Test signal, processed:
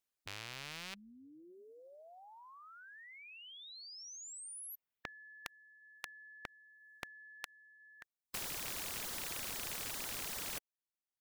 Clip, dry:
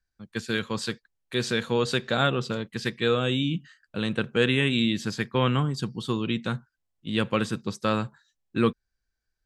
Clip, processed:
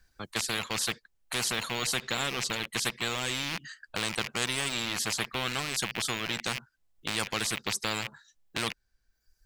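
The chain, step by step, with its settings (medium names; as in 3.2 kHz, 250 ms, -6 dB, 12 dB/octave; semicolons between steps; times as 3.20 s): rattle on loud lows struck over -39 dBFS, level -24 dBFS; reverb removal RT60 0.91 s; spectrum-flattening compressor 4:1; trim -4 dB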